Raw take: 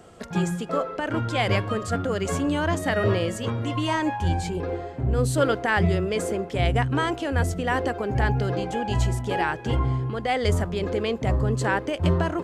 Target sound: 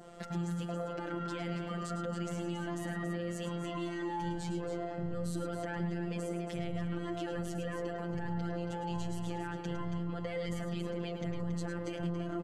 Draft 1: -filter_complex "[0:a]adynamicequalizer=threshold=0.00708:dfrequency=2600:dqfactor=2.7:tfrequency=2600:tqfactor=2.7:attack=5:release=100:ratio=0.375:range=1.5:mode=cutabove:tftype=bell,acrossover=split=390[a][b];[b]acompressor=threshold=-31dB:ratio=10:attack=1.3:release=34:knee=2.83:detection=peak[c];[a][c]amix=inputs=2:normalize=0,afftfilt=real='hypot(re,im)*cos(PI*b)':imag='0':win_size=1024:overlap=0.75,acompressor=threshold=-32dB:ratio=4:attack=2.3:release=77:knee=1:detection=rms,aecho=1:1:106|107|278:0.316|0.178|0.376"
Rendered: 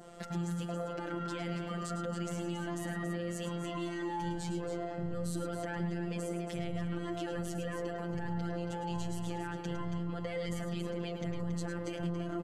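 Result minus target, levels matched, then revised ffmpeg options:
8000 Hz band +3.0 dB
-filter_complex "[0:a]adynamicequalizer=threshold=0.00708:dfrequency=2600:dqfactor=2.7:tfrequency=2600:tqfactor=2.7:attack=5:release=100:ratio=0.375:range=1.5:mode=cutabove:tftype=bell,acrossover=split=390[a][b];[b]acompressor=threshold=-31dB:ratio=10:attack=1.3:release=34:knee=2.83:detection=peak[c];[a][c]amix=inputs=2:normalize=0,afftfilt=real='hypot(re,im)*cos(PI*b)':imag='0':win_size=1024:overlap=0.75,acompressor=threshold=-32dB:ratio=4:attack=2.3:release=77:knee=1:detection=rms,highshelf=f=6.6k:g=-5,aecho=1:1:106|107|278:0.316|0.178|0.376"

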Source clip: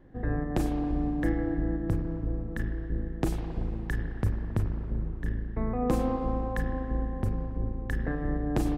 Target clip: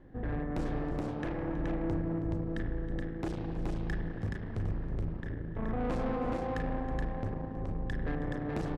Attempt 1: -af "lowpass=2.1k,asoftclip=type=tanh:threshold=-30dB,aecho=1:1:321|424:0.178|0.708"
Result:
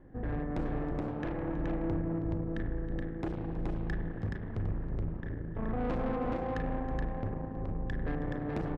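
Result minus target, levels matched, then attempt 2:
4000 Hz band -3.0 dB
-af "lowpass=5.2k,asoftclip=type=tanh:threshold=-30dB,aecho=1:1:321|424:0.178|0.708"

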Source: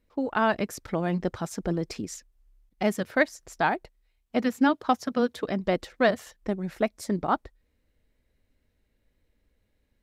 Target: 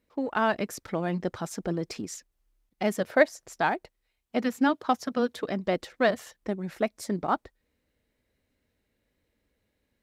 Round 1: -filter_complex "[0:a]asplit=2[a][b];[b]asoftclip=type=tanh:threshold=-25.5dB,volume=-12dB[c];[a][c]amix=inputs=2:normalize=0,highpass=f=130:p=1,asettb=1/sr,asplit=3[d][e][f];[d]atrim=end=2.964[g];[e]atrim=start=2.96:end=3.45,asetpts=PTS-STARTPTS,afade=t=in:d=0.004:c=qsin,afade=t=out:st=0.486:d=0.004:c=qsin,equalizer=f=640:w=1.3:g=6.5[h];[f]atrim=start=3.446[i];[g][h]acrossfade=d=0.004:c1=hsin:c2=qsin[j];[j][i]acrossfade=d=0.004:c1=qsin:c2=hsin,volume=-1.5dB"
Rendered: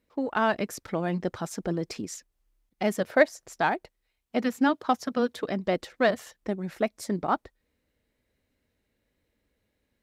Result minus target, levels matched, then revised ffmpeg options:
soft clip: distortion -5 dB
-filter_complex "[0:a]asplit=2[a][b];[b]asoftclip=type=tanh:threshold=-35dB,volume=-12dB[c];[a][c]amix=inputs=2:normalize=0,highpass=f=130:p=1,asettb=1/sr,asplit=3[d][e][f];[d]atrim=end=2.964[g];[e]atrim=start=2.96:end=3.45,asetpts=PTS-STARTPTS,afade=t=in:d=0.004:c=qsin,afade=t=out:st=0.486:d=0.004:c=qsin,equalizer=f=640:w=1.3:g=6.5[h];[f]atrim=start=3.446[i];[g][h]acrossfade=d=0.004:c1=hsin:c2=qsin[j];[j][i]acrossfade=d=0.004:c1=qsin:c2=hsin,volume=-1.5dB"

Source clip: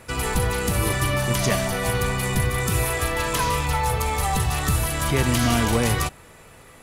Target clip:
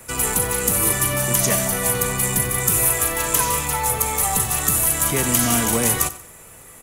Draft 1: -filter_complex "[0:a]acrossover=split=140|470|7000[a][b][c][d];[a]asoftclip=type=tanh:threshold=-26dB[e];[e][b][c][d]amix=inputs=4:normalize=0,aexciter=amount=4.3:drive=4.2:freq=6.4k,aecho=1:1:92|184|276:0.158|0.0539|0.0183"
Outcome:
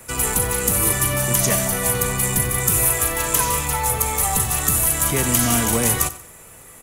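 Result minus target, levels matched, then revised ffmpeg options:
soft clip: distortion -5 dB
-filter_complex "[0:a]acrossover=split=140|470|7000[a][b][c][d];[a]asoftclip=type=tanh:threshold=-32.5dB[e];[e][b][c][d]amix=inputs=4:normalize=0,aexciter=amount=4.3:drive=4.2:freq=6.4k,aecho=1:1:92|184|276:0.158|0.0539|0.0183"

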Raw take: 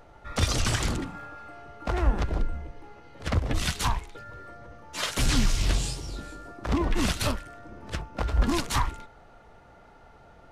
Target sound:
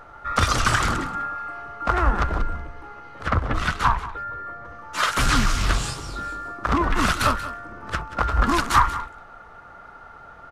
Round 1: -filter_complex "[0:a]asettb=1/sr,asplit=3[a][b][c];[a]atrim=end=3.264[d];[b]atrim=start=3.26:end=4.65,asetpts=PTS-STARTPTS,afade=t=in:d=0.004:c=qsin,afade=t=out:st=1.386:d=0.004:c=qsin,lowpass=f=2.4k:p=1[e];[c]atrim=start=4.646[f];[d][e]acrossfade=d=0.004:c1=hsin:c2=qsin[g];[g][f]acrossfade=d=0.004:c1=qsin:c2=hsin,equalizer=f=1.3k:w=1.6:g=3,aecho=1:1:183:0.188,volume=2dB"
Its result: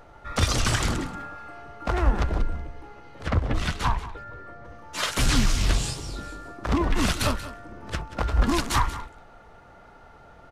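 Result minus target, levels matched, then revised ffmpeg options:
1000 Hz band -5.0 dB
-filter_complex "[0:a]asettb=1/sr,asplit=3[a][b][c];[a]atrim=end=3.264[d];[b]atrim=start=3.26:end=4.65,asetpts=PTS-STARTPTS,afade=t=in:d=0.004:c=qsin,afade=t=out:st=1.386:d=0.004:c=qsin,lowpass=f=2.4k:p=1[e];[c]atrim=start=4.646[f];[d][e]acrossfade=d=0.004:c1=hsin:c2=qsin[g];[g][f]acrossfade=d=0.004:c1=qsin:c2=hsin,equalizer=f=1.3k:w=1.6:g=14.5,aecho=1:1:183:0.188,volume=2dB"

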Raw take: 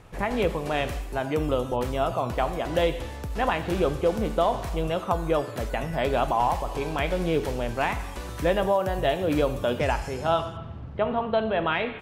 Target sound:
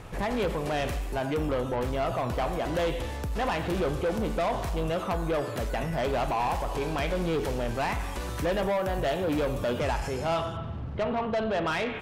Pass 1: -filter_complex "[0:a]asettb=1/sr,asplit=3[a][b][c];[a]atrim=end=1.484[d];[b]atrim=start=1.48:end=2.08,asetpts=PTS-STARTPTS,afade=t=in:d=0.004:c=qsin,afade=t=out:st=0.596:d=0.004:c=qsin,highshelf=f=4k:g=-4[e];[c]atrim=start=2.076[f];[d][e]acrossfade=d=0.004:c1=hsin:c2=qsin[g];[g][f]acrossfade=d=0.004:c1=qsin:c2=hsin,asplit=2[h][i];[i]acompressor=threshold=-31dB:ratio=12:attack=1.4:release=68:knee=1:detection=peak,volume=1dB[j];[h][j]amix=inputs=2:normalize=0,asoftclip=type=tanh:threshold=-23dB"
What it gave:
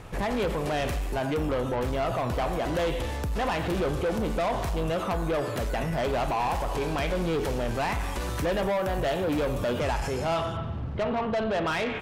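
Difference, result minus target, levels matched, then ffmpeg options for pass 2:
compressor: peak gain reduction -9.5 dB
-filter_complex "[0:a]asettb=1/sr,asplit=3[a][b][c];[a]atrim=end=1.484[d];[b]atrim=start=1.48:end=2.08,asetpts=PTS-STARTPTS,afade=t=in:d=0.004:c=qsin,afade=t=out:st=0.596:d=0.004:c=qsin,highshelf=f=4k:g=-4[e];[c]atrim=start=2.076[f];[d][e]acrossfade=d=0.004:c1=hsin:c2=qsin[g];[g][f]acrossfade=d=0.004:c1=qsin:c2=hsin,asplit=2[h][i];[i]acompressor=threshold=-41.5dB:ratio=12:attack=1.4:release=68:knee=1:detection=peak,volume=1dB[j];[h][j]amix=inputs=2:normalize=0,asoftclip=type=tanh:threshold=-23dB"

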